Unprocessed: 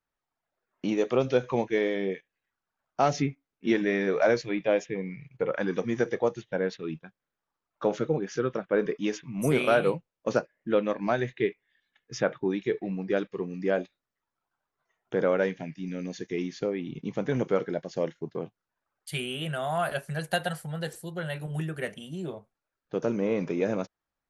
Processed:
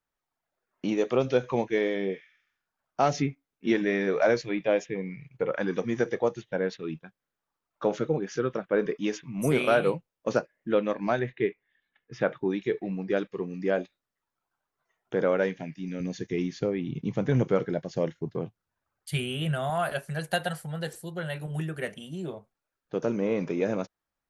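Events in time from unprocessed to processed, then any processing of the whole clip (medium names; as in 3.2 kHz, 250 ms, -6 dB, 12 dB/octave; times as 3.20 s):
2.14–2.68 s: spectral replace 1.2–9.4 kHz
11.19–12.21 s: low-pass 2.8 kHz
16.00–19.70 s: peaking EQ 88 Hz +12 dB 1.6 oct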